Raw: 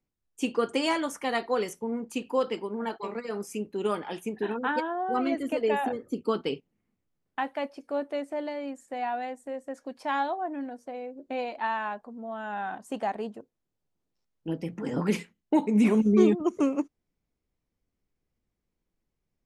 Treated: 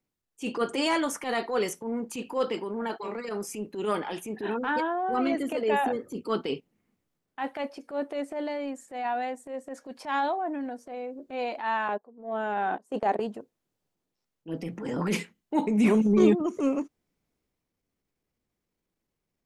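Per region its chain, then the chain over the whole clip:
11.88–13.2 gate -39 dBFS, range -20 dB + bell 430 Hz +11 dB 1.2 oct
whole clip: low shelf 85 Hz -10 dB; transient shaper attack -10 dB, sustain +3 dB; gain +2.5 dB

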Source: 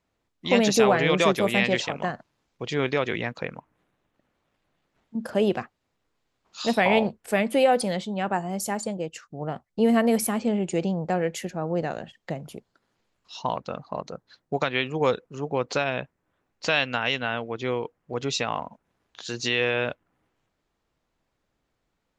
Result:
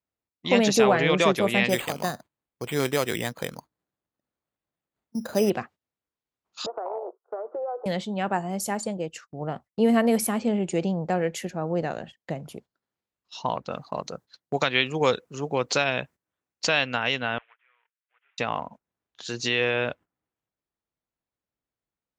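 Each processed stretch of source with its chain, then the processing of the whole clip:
1.69–5.5 LPF 3300 Hz + careless resampling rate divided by 8×, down none, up hold
6.66–7.86 Chebyshev band-pass 350–1400 Hz, order 5 + compressor 5:1, threshold -29 dBFS
13.71–16.67 HPF 47 Hz + high shelf 3100 Hz +10.5 dB
17.38–18.38 CVSD 16 kbps + ladder high-pass 1300 Hz, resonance 30% + air absorption 320 m
whole clip: gate -45 dBFS, range -16 dB; HPF 43 Hz

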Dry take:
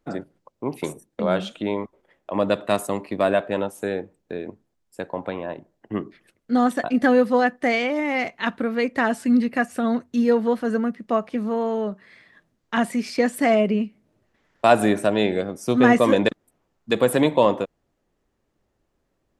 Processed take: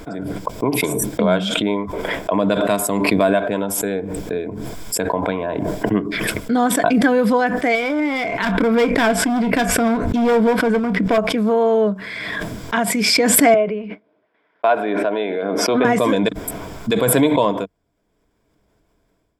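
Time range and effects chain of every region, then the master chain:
7.75–11.18 high shelf 4200 Hz -10 dB + hard clip -21 dBFS + doubler 26 ms -13 dB
13.54–15.85 expander -43 dBFS + HPF 410 Hz + air absorption 350 m
whole clip: AGC gain up to 11.5 dB; ripple EQ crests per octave 1.7, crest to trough 8 dB; backwards sustainer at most 20 dB/s; gain -4.5 dB

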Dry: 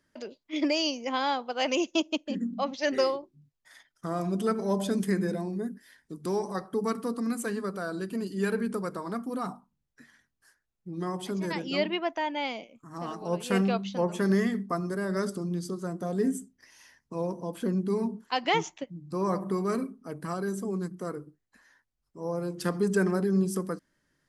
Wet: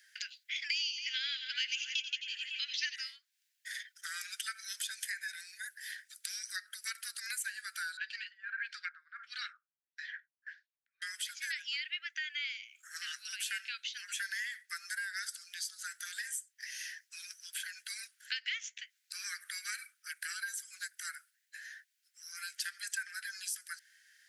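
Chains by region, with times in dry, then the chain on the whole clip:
0.7–2.96 weighting filter D + split-band echo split 2500 Hz, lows 0.276 s, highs 86 ms, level -10 dB
7.97–11.02 LFO low-pass sine 1.6 Hz 550–4800 Hz + gate with hold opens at -51 dBFS, closes at -58 dBFS + air absorption 100 m
whole clip: steep high-pass 1500 Hz 96 dB/oct; compressor 5:1, threshold -51 dBFS; gain +13.5 dB

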